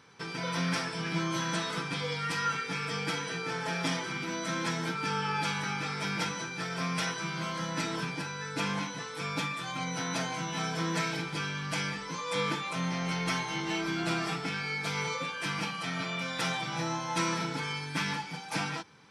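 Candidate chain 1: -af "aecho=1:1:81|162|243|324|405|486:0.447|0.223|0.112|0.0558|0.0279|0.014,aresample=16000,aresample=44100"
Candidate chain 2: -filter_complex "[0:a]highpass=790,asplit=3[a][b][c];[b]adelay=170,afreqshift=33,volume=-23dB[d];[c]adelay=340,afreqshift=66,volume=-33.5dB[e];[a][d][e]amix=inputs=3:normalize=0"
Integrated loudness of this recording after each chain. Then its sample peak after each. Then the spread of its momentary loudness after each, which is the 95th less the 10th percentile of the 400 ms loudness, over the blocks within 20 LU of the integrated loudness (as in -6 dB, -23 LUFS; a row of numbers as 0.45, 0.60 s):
-31.5, -34.5 LUFS; -17.0, -17.5 dBFS; 4, 4 LU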